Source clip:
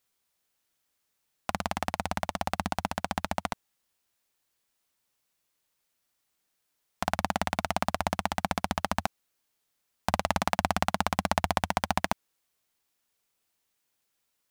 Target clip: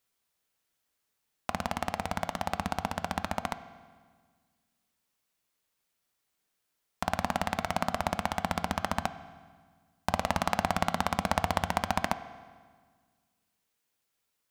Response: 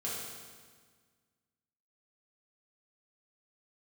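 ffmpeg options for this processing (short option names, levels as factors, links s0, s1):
-filter_complex "[0:a]asplit=2[s0][s1];[1:a]atrim=start_sample=2205,lowpass=4200[s2];[s1][s2]afir=irnorm=-1:irlink=0,volume=0.237[s3];[s0][s3]amix=inputs=2:normalize=0,volume=0.75"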